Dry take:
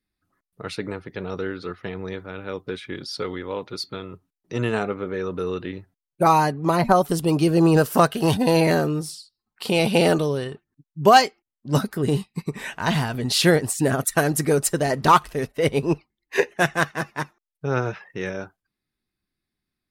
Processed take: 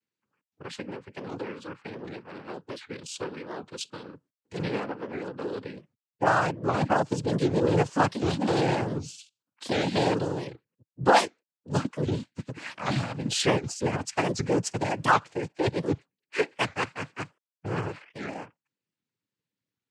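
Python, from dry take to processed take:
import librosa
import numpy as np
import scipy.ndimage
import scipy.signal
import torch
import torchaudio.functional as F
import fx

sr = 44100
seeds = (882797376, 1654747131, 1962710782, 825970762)

y = fx.noise_vocoder(x, sr, seeds[0], bands=8)
y = fx.record_warp(y, sr, rpm=78.0, depth_cents=250.0)
y = y * 10.0 ** (-6.0 / 20.0)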